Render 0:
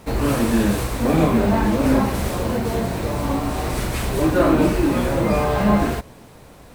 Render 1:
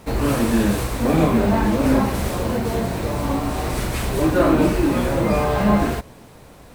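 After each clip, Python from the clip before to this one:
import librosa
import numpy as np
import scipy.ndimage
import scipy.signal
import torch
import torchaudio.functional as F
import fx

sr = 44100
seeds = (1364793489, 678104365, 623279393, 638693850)

y = x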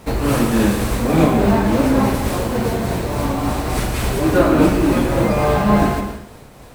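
y = fx.tremolo_shape(x, sr, shape='triangle', hz=3.5, depth_pct=45)
y = fx.rev_plate(y, sr, seeds[0], rt60_s=0.79, hf_ratio=0.95, predelay_ms=95, drr_db=6.0)
y = F.gain(torch.from_numpy(y), 4.0).numpy()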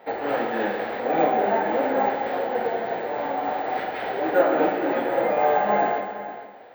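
y = fx.cabinet(x, sr, low_hz=490.0, low_slope=12, high_hz=3100.0, hz=(500.0, 780.0, 1100.0, 1800.0, 2600.0), db=(5, 9, -9, 4, -6))
y = y + 10.0 ** (-13.5 / 20.0) * np.pad(y, (int(462 * sr / 1000.0), 0))[:len(y)]
y = np.repeat(scipy.signal.resample_poly(y, 1, 2), 2)[:len(y)]
y = F.gain(torch.from_numpy(y), -4.0).numpy()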